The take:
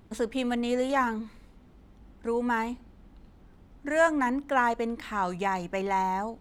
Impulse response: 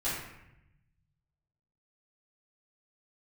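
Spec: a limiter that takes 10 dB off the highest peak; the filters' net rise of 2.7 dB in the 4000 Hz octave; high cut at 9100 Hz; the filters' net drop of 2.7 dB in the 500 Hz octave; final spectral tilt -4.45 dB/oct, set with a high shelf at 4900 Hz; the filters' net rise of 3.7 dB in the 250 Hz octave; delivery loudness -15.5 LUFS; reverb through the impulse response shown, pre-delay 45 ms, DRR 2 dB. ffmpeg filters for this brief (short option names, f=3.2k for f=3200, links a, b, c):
-filter_complex "[0:a]lowpass=9.1k,equalizer=f=250:t=o:g=5,equalizer=f=500:t=o:g=-4.5,equalizer=f=4k:t=o:g=6,highshelf=f=4.9k:g=-5,alimiter=limit=-23dB:level=0:latency=1,asplit=2[a][b];[1:a]atrim=start_sample=2205,adelay=45[c];[b][c]afir=irnorm=-1:irlink=0,volume=-9dB[d];[a][d]amix=inputs=2:normalize=0,volume=14.5dB"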